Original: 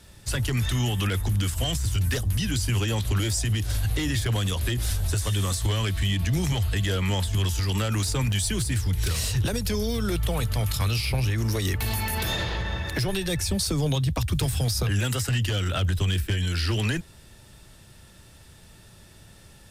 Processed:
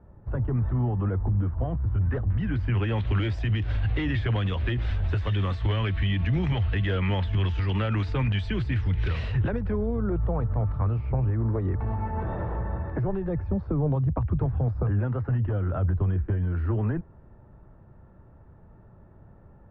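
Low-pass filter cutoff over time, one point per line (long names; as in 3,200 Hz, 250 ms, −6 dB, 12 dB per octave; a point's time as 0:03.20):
low-pass filter 24 dB per octave
0:01.75 1,100 Hz
0:03.08 2,700 Hz
0:09.19 2,700 Hz
0:09.92 1,200 Hz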